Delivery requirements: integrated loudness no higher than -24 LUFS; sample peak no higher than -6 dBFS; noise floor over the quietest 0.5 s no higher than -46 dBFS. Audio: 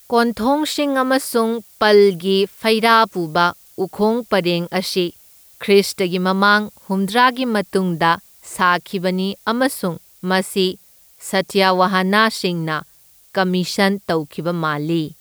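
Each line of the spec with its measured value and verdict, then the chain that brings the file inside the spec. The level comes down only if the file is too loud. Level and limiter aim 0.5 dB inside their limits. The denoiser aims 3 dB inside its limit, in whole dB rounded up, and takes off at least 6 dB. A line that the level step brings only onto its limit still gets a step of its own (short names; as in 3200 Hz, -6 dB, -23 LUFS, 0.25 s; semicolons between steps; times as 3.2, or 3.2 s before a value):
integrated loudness -18.0 LUFS: fail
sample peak -2.0 dBFS: fail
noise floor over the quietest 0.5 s -50 dBFS: OK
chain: gain -6.5 dB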